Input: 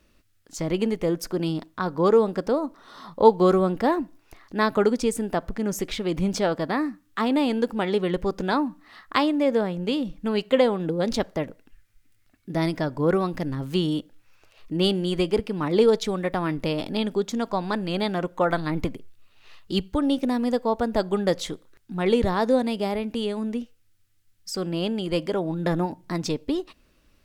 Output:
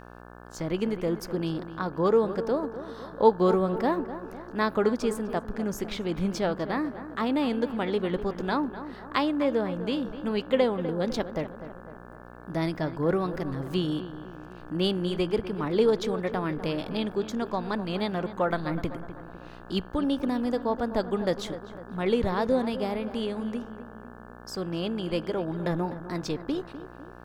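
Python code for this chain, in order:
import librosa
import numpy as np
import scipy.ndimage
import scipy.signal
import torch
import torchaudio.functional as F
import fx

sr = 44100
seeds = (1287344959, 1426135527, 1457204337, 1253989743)

y = fx.dynamic_eq(x, sr, hz=8400.0, q=1.0, threshold_db=-51.0, ratio=4.0, max_db=-5)
y = fx.echo_filtered(y, sr, ms=251, feedback_pct=54, hz=2000.0, wet_db=-12.0)
y = fx.dmg_buzz(y, sr, base_hz=60.0, harmonics=29, level_db=-43.0, tilt_db=-2, odd_only=False)
y = F.gain(torch.from_numpy(y), -4.0).numpy()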